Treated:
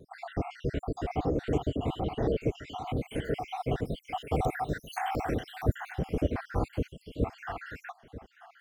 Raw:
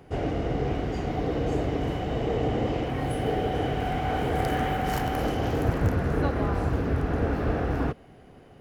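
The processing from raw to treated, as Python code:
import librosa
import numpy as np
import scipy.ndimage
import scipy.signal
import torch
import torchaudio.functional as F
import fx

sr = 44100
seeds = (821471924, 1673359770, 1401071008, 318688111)

y = fx.spec_dropout(x, sr, seeds[0], share_pct=75)
y = fx.vibrato(y, sr, rate_hz=2.6, depth_cents=39.0)
y = y + 10.0 ** (-15.5 / 20.0) * np.pad(y, (int(939 * sr / 1000.0), 0))[:len(y)]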